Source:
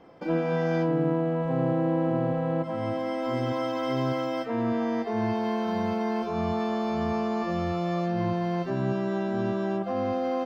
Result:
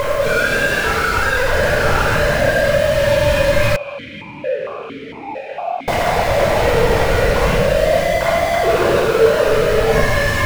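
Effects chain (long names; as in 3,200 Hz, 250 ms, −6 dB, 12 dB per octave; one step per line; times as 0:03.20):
three sine waves on the formant tracks
sine wavefolder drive 12 dB, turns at −16.5 dBFS
low-shelf EQ 400 Hz −9.5 dB
fuzz pedal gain 40 dB, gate −47 dBFS
downward compressor 10 to 1, threshold −30 dBFS, peak gain reduction 16.5 dB
rectangular room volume 1,800 cubic metres, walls mixed, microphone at 5 metres
bit-depth reduction 6 bits, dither triangular
spectral tilt −2 dB per octave
0:03.76–0:05.88: formant filter that steps through the vowels 4.4 Hz
level +4 dB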